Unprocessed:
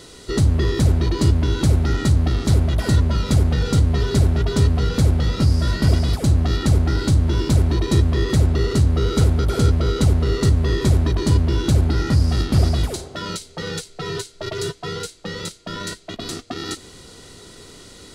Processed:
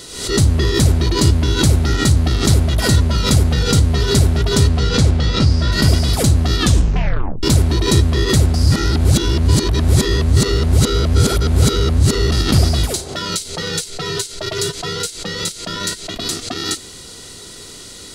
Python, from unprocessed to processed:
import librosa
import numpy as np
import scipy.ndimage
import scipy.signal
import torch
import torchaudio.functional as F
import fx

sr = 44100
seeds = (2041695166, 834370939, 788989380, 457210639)

y = fx.lowpass(x, sr, hz=fx.line((4.68, 9100.0), (5.71, 4200.0)), slope=12, at=(4.68, 5.71), fade=0.02)
y = fx.edit(y, sr, fx.tape_stop(start_s=6.58, length_s=0.85),
    fx.reverse_span(start_s=8.54, length_s=3.78), tone=tone)
y = fx.high_shelf(y, sr, hz=2900.0, db=9.0)
y = fx.pre_swell(y, sr, db_per_s=75.0)
y = y * 10.0 ** (2.5 / 20.0)